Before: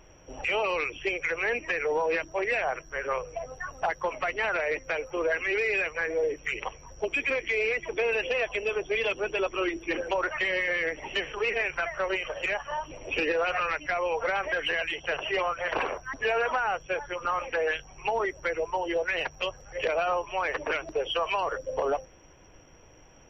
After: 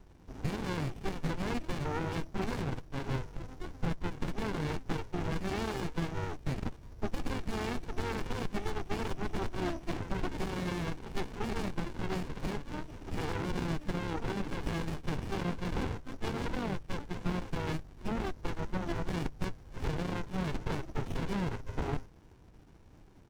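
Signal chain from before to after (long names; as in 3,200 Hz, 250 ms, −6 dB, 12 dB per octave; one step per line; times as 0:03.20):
pitch-shifted copies added −4 semitones −12 dB
windowed peak hold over 65 samples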